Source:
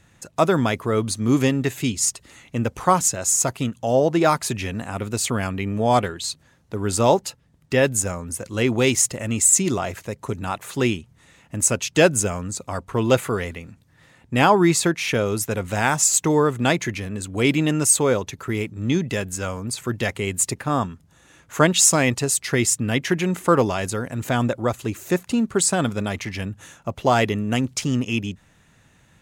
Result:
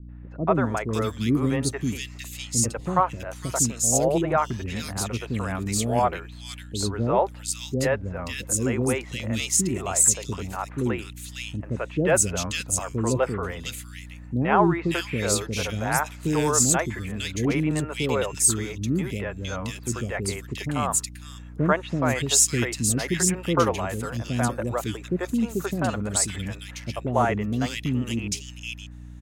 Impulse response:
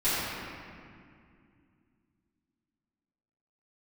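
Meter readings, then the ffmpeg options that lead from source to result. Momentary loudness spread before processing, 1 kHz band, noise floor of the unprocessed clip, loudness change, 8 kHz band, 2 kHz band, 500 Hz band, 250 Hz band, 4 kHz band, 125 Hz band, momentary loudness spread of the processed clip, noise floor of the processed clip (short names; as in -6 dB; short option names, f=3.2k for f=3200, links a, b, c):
12 LU, -3.5 dB, -57 dBFS, -3.5 dB, -2.5 dB, -4.5 dB, -5.0 dB, -3.5 dB, -3.5 dB, -2.5 dB, 13 LU, -41 dBFS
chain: -filter_complex "[0:a]aeval=exprs='val(0)+0.0141*(sin(2*PI*60*n/s)+sin(2*PI*2*60*n/s)/2+sin(2*PI*3*60*n/s)/3+sin(2*PI*4*60*n/s)/4+sin(2*PI*5*60*n/s)/5)':c=same,acrossover=split=420|2300[a][b][c];[b]adelay=90[d];[c]adelay=550[e];[a][d][e]amix=inputs=3:normalize=0,volume=-2.5dB"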